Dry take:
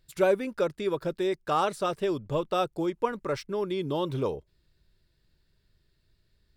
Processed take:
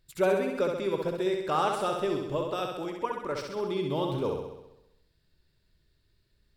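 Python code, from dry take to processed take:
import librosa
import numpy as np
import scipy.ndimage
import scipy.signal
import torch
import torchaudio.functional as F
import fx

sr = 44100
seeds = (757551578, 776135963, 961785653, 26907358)

y = fx.hpss(x, sr, part='harmonic', gain_db=-7, at=(2.17, 3.57))
y = fx.room_flutter(y, sr, wall_m=11.2, rt60_s=0.91)
y = y * 10.0 ** (-2.0 / 20.0)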